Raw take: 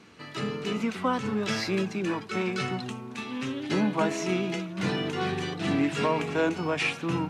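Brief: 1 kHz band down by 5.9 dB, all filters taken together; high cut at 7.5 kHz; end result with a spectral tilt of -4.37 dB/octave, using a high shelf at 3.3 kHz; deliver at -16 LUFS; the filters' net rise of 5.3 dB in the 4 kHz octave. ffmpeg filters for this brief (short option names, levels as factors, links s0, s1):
-af "lowpass=7500,equalizer=f=1000:t=o:g=-8.5,highshelf=f=3300:g=7,equalizer=f=4000:t=o:g=3,volume=4.22"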